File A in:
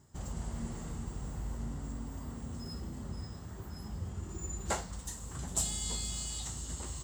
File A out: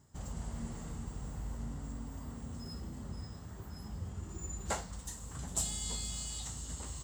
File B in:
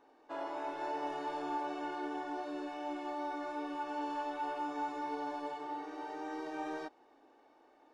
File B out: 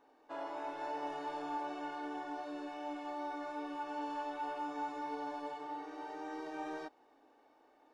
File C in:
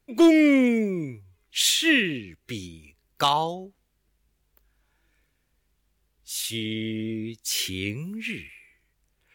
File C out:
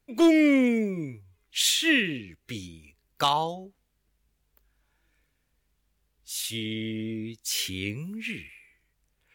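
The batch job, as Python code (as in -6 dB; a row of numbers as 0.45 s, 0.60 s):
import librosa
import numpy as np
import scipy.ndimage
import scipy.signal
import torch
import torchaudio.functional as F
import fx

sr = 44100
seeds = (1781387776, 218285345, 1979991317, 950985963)

y = fx.notch(x, sr, hz=360.0, q=12.0)
y = y * librosa.db_to_amplitude(-2.0)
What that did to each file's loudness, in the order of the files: -2.0 LU, -2.0 LU, -2.0 LU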